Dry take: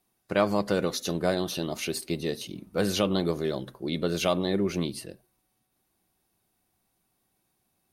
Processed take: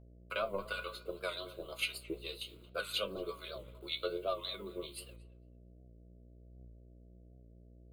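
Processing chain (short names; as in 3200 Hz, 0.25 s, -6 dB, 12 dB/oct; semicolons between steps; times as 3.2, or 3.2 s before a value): expander -44 dBFS; weighting filter A; in parallel at +1 dB: limiter -19.5 dBFS, peak gain reduction 9.5 dB; on the sum: transient shaper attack +8 dB, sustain -2 dB; metallic resonator 65 Hz, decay 0.23 s, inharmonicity 0.008; harmonic tremolo 1.9 Hz, depth 100%, crossover 910 Hz; requantised 10-bit, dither none; fixed phaser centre 1200 Hz, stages 8; buzz 60 Hz, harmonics 11, -54 dBFS -7 dB/oct; flange 0.68 Hz, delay 8.8 ms, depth 7.9 ms, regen +70%; on a send: tape echo 0.225 s, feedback 22%, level -17 dB, low-pass 2000 Hz; on the sum: record warp 78 rpm, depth 100 cents; gain +2 dB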